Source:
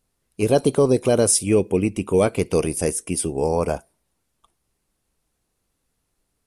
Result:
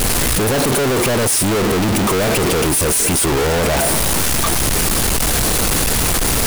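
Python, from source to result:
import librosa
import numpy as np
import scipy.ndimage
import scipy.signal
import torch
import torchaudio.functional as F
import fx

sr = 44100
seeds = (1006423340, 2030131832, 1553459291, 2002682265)

y = np.sign(x) * np.sqrt(np.mean(np.square(x)))
y = y * librosa.db_to_amplitude(7.0)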